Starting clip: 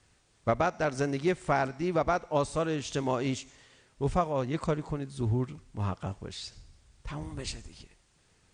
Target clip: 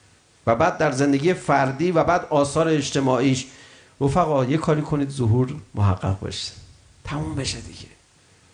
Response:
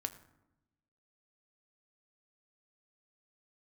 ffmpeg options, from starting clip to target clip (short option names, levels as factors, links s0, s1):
-filter_complex "[0:a]highpass=80,asplit=2[s0][s1];[s1]alimiter=level_in=1.06:limit=0.0631:level=0:latency=1,volume=0.944,volume=1[s2];[s0][s2]amix=inputs=2:normalize=0[s3];[1:a]atrim=start_sample=2205,atrim=end_sample=3969[s4];[s3][s4]afir=irnorm=-1:irlink=0,volume=2.11"